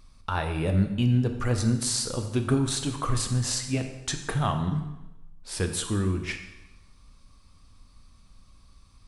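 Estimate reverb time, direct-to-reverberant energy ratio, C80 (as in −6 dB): 0.95 s, 5.5 dB, 10.0 dB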